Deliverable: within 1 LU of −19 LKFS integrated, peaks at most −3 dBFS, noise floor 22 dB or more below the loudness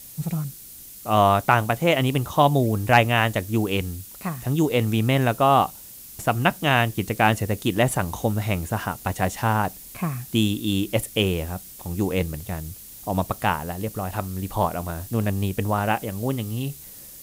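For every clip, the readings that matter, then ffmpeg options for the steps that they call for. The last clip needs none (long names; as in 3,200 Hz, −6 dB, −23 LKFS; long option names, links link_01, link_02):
background noise floor −42 dBFS; target noise floor −46 dBFS; integrated loudness −23.5 LKFS; sample peak −4.0 dBFS; target loudness −19.0 LKFS
→ -af "afftdn=noise_reduction=6:noise_floor=-42"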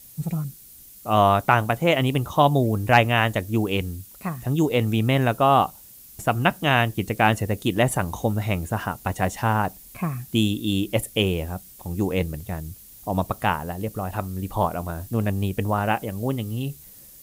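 background noise floor −47 dBFS; integrated loudness −23.5 LKFS; sample peak −4.0 dBFS; target loudness −19.0 LKFS
→ -af "volume=4.5dB,alimiter=limit=-3dB:level=0:latency=1"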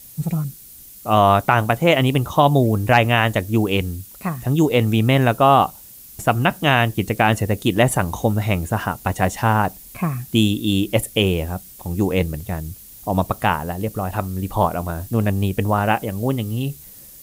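integrated loudness −19.5 LKFS; sample peak −3.0 dBFS; background noise floor −42 dBFS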